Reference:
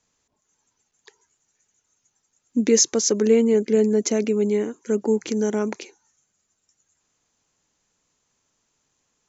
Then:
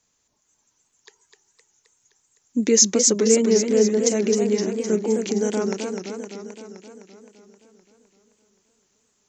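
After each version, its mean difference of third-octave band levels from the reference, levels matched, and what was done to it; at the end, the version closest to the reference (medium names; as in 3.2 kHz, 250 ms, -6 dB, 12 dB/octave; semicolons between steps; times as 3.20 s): 4.5 dB: treble shelf 4.7 kHz +6 dB; modulated delay 259 ms, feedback 65%, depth 163 cents, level -6 dB; trim -1 dB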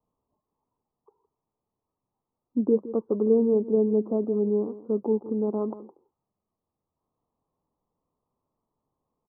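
7.0 dB: steep low-pass 1.2 kHz 96 dB/octave; delay 164 ms -15.5 dB; trim -4 dB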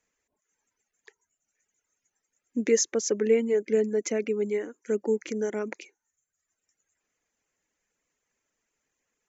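3.5 dB: reverb removal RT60 0.76 s; graphic EQ 125/500/1000/2000/4000 Hz -7/+4/-4/+9/-7 dB; trim -6.5 dB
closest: third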